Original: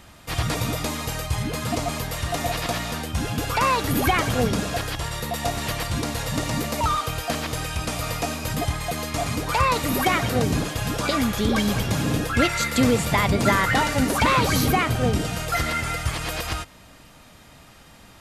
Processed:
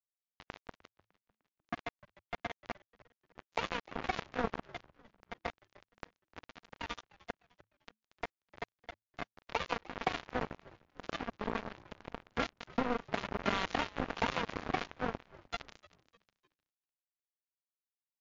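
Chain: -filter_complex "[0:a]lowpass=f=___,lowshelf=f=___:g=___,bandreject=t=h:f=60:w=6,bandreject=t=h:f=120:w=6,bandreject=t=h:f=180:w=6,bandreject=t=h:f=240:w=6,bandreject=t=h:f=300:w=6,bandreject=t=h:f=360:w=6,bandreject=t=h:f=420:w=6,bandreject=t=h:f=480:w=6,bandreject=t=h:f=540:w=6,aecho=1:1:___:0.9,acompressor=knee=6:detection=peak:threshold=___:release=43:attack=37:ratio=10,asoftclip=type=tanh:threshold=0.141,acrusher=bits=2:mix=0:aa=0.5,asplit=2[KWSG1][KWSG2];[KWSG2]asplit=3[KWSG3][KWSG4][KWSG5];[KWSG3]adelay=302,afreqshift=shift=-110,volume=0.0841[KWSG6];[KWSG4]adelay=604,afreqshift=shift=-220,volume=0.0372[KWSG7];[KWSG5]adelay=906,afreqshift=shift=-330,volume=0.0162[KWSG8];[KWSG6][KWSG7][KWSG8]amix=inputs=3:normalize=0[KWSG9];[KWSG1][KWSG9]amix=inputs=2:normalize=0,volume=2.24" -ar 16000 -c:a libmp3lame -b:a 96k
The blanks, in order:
1200, 170, -8.5, 4.3, 0.0794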